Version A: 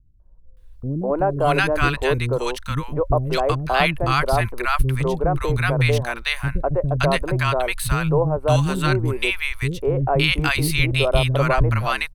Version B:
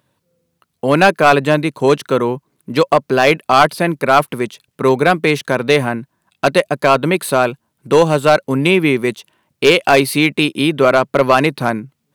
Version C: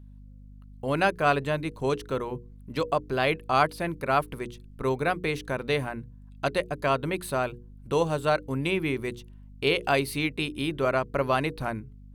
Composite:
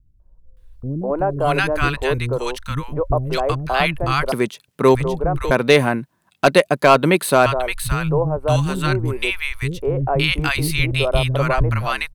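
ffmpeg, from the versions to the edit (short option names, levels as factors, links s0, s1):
-filter_complex "[1:a]asplit=2[s0][s1];[0:a]asplit=3[s2][s3][s4];[s2]atrim=end=4.322[s5];[s0]atrim=start=4.318:end=4.952[s6];[s3]atrim=start=4.948:end=5.512[s7];[s1]atrim=start=5.508:end=7.462[s8];[s4]atrim=start=7.458[s9];[s5][s6]acrossfade=d=0.004:c1=hsin:c2=hsin[s10];[s10][s7]acrossfade=d=0.004:c1=hsin:c2=hsin[s11];[s11][s8]acrossfade=d=0.004:c1=hsin:c2=hsin[s12];[s12][s9]acrossfade=d=0.004:c1=hsin:c2=hsin"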